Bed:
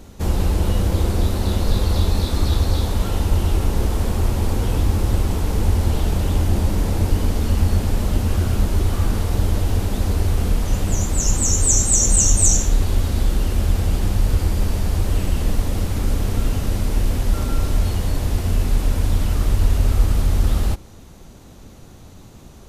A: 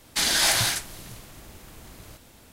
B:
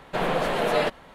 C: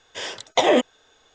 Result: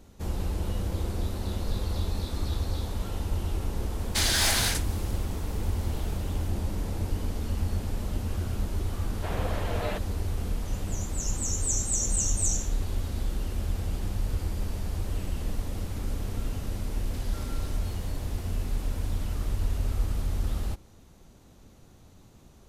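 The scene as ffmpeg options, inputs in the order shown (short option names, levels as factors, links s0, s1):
-filter_complex "[1:a]asplit=2[s0][s1];[0:a]volume=0.266[s2];[s0]asoftclip=type=hard:threshold=0.133[s3];[2:a]lowpass=7500[s4];[s1]acompressor=threshold=0.0178:ratio=6:attack=3.2:release=140:knee=1:detection=peak[s5];[s3]atrim=end=2.52,asetpts=PTS-STARTPTS,volume=0.75,afade=t=in:d=0.004:c=hsin,afade=t=out:st=2.516:d=0.004:c=hsin,adelay=3990[s6];[s4]atrim=end=1.14,asetpts=PTS-STARTPTS,volume=0.299,afade=t=in:d=0.004:c=hsin,afade=t=out:st=1.136:d=0.004:c=hsin,adelay=9090[s7];[s5]atrim=end=2.52,asetpts=PTS-STARTPTS,volume=0.178,afade=t=in:d=0.004:c=hsin,afade=t=out:st=2.516:d=0.004:c=hsin,adelay=16980[s8];[s2][s6][s7][s8]amix=inputs=4:normalize=0"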